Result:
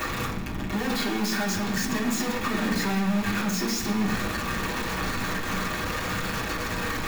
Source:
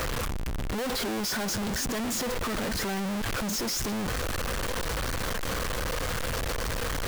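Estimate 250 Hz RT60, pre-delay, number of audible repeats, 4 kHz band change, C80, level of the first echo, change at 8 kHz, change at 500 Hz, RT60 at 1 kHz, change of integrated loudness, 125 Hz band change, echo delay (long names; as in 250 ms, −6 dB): 0.90 s, 3 ms, no echo audible, +1.0 dB, 10.0 dB, no echo audible, −1.0 dB, 0.0 dB, 0.70 s, +3.0 dB, +2.5 dB, no echo audible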